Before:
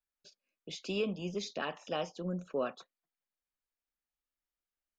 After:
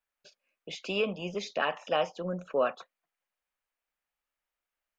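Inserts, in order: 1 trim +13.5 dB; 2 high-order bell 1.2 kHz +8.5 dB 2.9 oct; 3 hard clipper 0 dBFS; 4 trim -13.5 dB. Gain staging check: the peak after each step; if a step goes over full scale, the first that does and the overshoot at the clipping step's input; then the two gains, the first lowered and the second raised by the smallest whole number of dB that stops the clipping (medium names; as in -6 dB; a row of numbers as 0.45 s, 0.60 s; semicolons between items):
-9.0 dBFS, -1.5 dBFS, -1.5 dBFS, -15.0 dBFS; nothing clips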